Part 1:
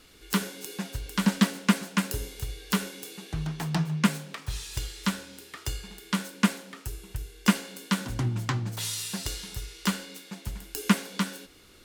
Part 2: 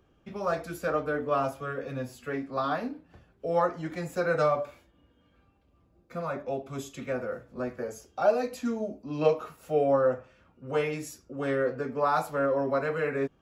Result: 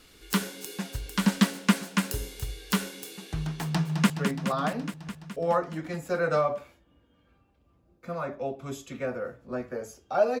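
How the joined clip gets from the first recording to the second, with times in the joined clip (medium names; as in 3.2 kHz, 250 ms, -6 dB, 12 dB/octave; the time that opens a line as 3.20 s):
part 1
3.74–4.10 s: echo throw 210 ms, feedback 75%, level -6.5 dB
4.10 s: go over to part 2 from 2.17 s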